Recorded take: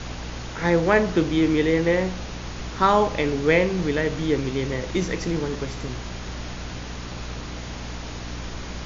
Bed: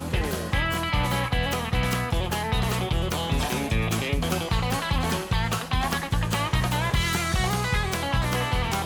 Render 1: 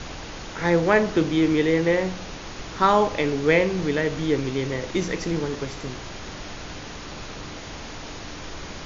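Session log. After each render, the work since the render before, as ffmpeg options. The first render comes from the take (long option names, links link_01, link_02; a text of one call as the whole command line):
ffmpeg -i in.wav -af "bandreject=frequency=60:width_type=h:width=6,bandreject=frequency=120:width_type=h:width=6,bandreject=frequency=180:width_type=h:width=6,bandreject=frequency=240:width_type=h:width=6" out.wav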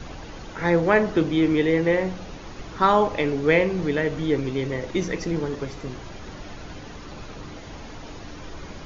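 ffmpeg -i in.wav -af "afftdn=noise_reduction=8:noise_floor=-37" out.wav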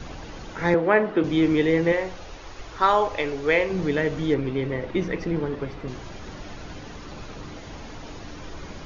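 ffmpeg -i in.wav -filter_complex "[0:a]asettb=1/sr,asplit=3[link_01][link_02][link_03];[link_01]atrim=end=0.744[link_04];[link_02]atrim=start=0.74:end=1.24,asetpts=PTS-STARTPTS,afade=type=in:duration=0.004:curve=qsin,afade=type=out:start_time=0.496:duration=0.004:curve=qsin,acrossover=split=190 3400:gain=0.158 1 0.0708[link_05][link_06][link_07];[link_05][link_06][link_07]amix=inputs=3:normalize=0[link_08];[link_03]atrim=start=1.236[link_09];[link_04][link_08]acrossfade=duration=0.004:curve1=hsin:curve2=qsin[link_10];[link_10][link_09]acrossfade=duration=0.004:curve1=qsin:curve2=hsin,asettb=1/sr,asplit=3[link_11][link_12][link_13];[link_11]atrim=end=1.924[link_14];[link_12]atrim=start=1.92:end=3.7,asetpts=PTS-STARTPTS,afade=type=in:duration=0.004:curve=qsin,afade=type=out:start_time=1.776:duration=0.004:curve=qsin,equalizer=frequency=190:width=1.1:gain=-13[link_15];[link_13]atrim=start=3.696[link_16];[link_14][link_15]acrossfade=duration=0.004:curve1=hsin:curve2=qsin[link_17];[link_17][link_16]acrossfade=duration=0.004:curve1=qsin:curve2=hsin,asettb=1/sr,asplit=3[link_18][link_19][link_20];[link_18]atrim=end=4.344[link_21];[link_19]atrim=start=4.34:end=5.88,asetpts=PTS-STARTPTS,afade=type=in:duration=0.004:curve=qsin,afade=type=out:start_time=1.536:duration=0.004:curve=qsin,lowpass=3200[link_22];[link_20]atrim=start=5.876[link_23];[link_21][link_22]acrossfade=duration=0.004:curve1=hsin:curve2=qsin[link_24];[link_24][link_23]acrossfade=duration=0.004:curve1=qsin:curve2=hsin" out.wav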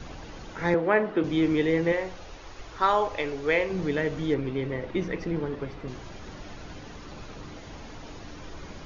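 ffmpeg -i in.wav -af "volume=-3.5dB" out.wav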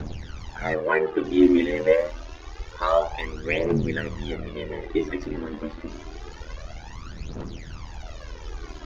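ffmpeg -i in.wav -af "aphaser=in_gain=1:out_gain=1:delay=4:decay=0.77:speed=0.27:type=triangular,aeval=exprs='val(0)*sin(2*PI*40*n/s)':channel_layout=same" out.wav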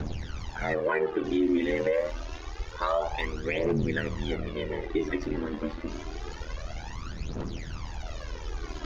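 ffmpeg -i in.wav -af "areverse,acompressor=mode=upward:threshold=-31dB:ratio=2.5,areverse,alimiter=limit=-17dB:level=0:latency=1:release=97" out.wav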